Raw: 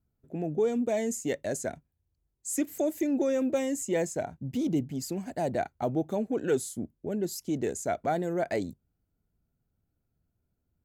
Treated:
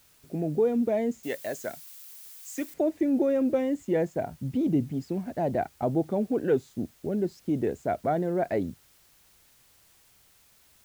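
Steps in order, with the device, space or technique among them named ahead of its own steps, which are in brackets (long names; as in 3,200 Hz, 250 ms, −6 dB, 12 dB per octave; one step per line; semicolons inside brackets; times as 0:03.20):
cassette deck with a dirty head (head-to-tape spacing loss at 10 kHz 32 dB; tape wow and flutter; white noise bed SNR 32 dB)
0:01.23–0:02.74: spectral tilt +4 dB per octave
level +4 dB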